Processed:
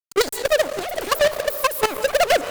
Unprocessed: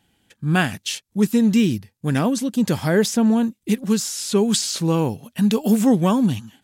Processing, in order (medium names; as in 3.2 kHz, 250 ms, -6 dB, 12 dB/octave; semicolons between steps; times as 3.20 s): echo that smears into a reverb 470 ms, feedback 54%, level -14 dB; transient shaper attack +10 dB, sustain -6 dB; wide varispeed 2.65×; fuzz box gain 33 dB, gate -39 dBFS; level held to a coarse grid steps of 14 dB